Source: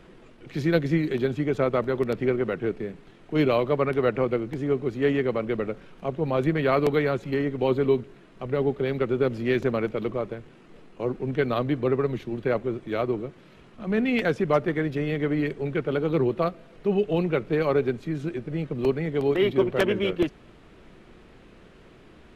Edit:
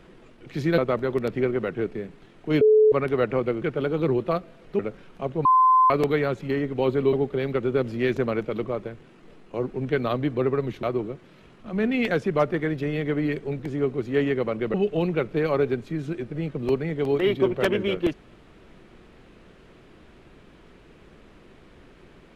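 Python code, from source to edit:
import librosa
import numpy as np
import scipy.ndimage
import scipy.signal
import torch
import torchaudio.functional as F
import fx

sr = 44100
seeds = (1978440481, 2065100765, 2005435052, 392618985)

y = fx.edit(x, sr, fx.cut(start_s=0.78, length_s=0.85),
    fx.bleep(start_s=3.46, length_s=0.31, hz=431.0, db=-12.5),
    fx.swap(start_s=4.47, length_s=1.15, other_s=15.73, other_length_s=1.17),
    fx.bleep(start_s=6.28, length_s=0.45, hz=1030.0, db=-13.5),
    fx.cut(start_s=7.96, length_s=0.63),
    fx.cut(start_s=12.29, length_s=0.68), tone=tone)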